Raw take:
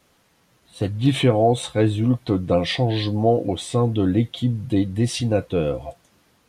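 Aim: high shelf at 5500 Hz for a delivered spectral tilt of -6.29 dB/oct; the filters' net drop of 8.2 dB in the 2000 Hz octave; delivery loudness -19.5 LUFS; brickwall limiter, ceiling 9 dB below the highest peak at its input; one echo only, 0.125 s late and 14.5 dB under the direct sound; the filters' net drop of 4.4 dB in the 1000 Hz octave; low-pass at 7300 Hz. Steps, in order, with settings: LPF 7300 Hz; bell 1000 Hz -6.5 dB; bell 2000 Hz -8 dB; high shelf 5500 Hz -5.5 dB; limiter -15.5 dBFS; echo 0.125 s -14.5 dB; gain +6 dB

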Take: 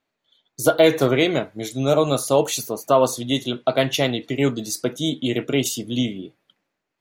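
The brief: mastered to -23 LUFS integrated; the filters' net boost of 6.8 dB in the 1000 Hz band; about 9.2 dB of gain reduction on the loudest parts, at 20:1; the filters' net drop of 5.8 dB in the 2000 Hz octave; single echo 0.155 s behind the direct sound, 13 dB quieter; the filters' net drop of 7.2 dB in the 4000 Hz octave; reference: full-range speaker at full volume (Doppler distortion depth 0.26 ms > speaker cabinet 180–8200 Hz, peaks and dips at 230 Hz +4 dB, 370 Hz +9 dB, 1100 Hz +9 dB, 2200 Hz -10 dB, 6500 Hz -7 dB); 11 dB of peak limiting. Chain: bell 1000 Hz +4.5 dB; bell 2000 Hz -4 dB; bell 4000 Hz -6.5 dB; compressor 20:1, threshold -18 dBFS; limiter -18 dBFS; echo 0.155 s -13 dB; Doppler distortion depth 0.26 ms; speaker cabinet 180–8200 Hz, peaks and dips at 230 Hz +4 dB, 370 Hz +9 dB, 1100 Hz +9 dB, 2200 Hz -10 dB, 6500 Hz -7 dB; gain +3.5 dB

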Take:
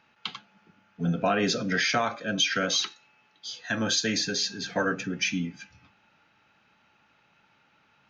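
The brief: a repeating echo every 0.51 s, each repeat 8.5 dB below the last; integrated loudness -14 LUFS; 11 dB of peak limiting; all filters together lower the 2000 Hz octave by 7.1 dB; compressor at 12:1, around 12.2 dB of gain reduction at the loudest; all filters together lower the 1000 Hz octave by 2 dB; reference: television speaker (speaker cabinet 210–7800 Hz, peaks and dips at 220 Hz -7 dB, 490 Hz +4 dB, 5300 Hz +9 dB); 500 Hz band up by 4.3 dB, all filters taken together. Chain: bell 500 Hz +4 dB; bell 1000 Hz -3 dB; bell 2000 Hz -9 dB; compressor 12:1, threshold -33 dBFS; limiter -30 dBFS; speaker cabinet 210–7800 Hz, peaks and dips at 220 Hz -7 dB, 490 Hz +4 dB, 5300 Hz +9 dB; feedback echo 0.51 s, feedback 38%, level -8.5 dB; gain +23.5 dB

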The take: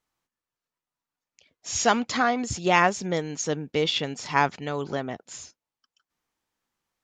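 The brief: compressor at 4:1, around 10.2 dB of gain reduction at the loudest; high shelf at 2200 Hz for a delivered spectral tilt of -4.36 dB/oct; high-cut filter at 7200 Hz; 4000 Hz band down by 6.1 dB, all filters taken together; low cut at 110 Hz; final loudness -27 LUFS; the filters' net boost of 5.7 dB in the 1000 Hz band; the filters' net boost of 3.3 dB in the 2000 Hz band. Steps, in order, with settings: HPF 110 Hz; LPF 7200 Hz; bell 1000 Hz +7.5 dB; bell 2000 Hz +5.5 dB; high shelf 2200 Hz -6 dB; bell 4000 Hz -5 dB; compressor 4:1, threshold -22 dBFS; gain +2 dB

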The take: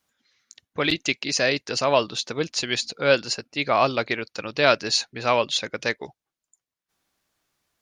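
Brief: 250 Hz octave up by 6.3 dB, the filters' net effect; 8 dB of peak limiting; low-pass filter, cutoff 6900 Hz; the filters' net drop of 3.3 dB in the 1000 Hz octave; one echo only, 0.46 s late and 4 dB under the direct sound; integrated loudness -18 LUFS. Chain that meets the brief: LPF 6900 Hz; bell 250 Hz +8 dB; bell 1000 Hz -5 dB; limiter -11.5 dBFS; echo 0.46 s -4 dB; gain +6 dB

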